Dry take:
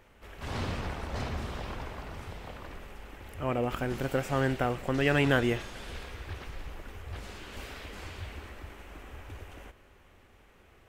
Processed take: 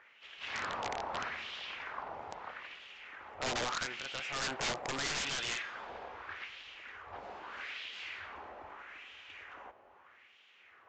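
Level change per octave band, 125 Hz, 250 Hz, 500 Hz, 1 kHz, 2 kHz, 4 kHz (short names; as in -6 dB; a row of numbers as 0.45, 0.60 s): -19.5, -16.5, -11.5, -2.5, -3.0, +3.0 dB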